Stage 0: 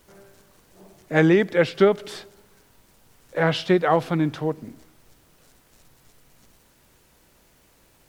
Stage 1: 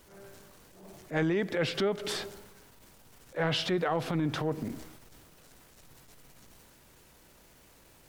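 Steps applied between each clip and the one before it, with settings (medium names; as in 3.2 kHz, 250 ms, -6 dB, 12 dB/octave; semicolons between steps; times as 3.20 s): transient shaper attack -10 dB, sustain +6 dB; compression 6:1, threshold -26 dBFS, peak gain reduction 12 dB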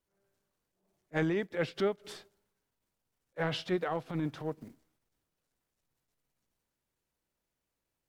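upward expansion 2.5:1, over -44 dBFS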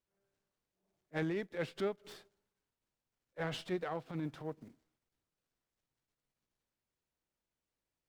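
sliding maximum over 3 samples; trim -5.5 dB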